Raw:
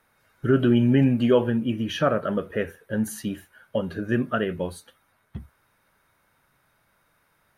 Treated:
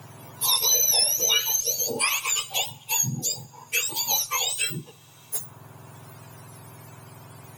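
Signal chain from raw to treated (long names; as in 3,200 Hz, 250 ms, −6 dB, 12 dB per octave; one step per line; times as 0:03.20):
frequency axis turned over on the octave scale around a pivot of 1,200 Hz
high-shelf EQ 6,100 Hz +8.5 dB
harmonic generator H 8 −41 dB, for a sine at −11.5 dBFS
on a send at −22.5 dB: convolution reverb, pre-delay 3 ms
on the sum: multiband upward and downward compressor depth 70%
level +1.5 dB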